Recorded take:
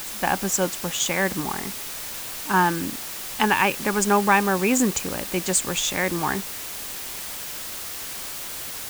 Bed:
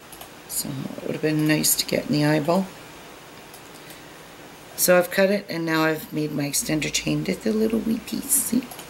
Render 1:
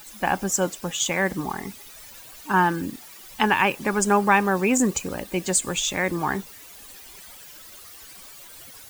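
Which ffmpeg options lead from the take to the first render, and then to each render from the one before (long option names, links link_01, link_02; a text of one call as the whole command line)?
ffmpeg -i in.wav -af "afftdn=noise_reduction=14:noise_floor=-34" out.wav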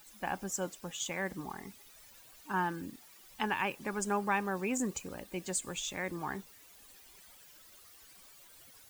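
ffmpeg -i in.wav -af "volume=-13dB" out.wav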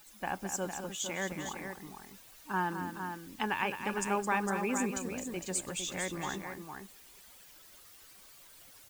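ffmpeg -i in.wav -af "aecho=1:1:215|457:0.376|0.422" out.wav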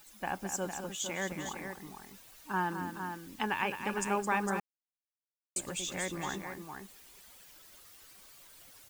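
ffmpeg -i in.wav -filter_complex "[0:a]asplit=3[link_01][link_02][link_03];[link_01]atrim=end=4.6,asetpts=PTS-STARTPTS,afade=type=out:start_time=4.596:duration=0.004:curve=hsin[link_04];[link_02]atrim=start=4.6:end=5.56,asetpts=PTS-STARTPTS,volume=0[link_05];[link_03]atrim=start=5.56,asetpts=PTS-STARTPTS,afade=type=in:duration=0.004:curve=hsin[link_06];[link_04][link_05][link_06]concat=n=3:v=0:a=1" out.wav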